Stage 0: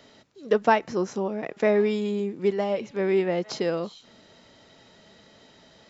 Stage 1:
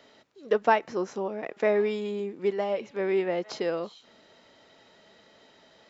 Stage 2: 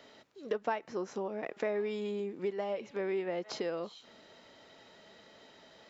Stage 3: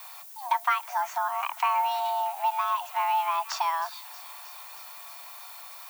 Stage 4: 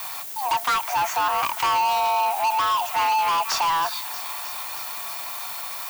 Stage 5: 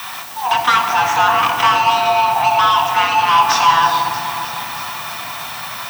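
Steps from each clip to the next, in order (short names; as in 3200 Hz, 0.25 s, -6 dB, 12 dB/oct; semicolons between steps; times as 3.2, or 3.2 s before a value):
tone controls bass -9 dB, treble -5 dB; gain -1.5 dB
compressor 2.5:1, threshold -35 dBFS, peak gain reduction 13 dB
added noise violet -54 dBFS; frequency shift +490 Hz; thin delay 0.316 s, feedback 78%, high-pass 2000 Hz, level -16 dB; gain +8 dB
sample leveller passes 5; gain -6 dB
reverb RT60 4.3 s, pre-delay 3 ms, DRR 1.5 dB; gain -1 dB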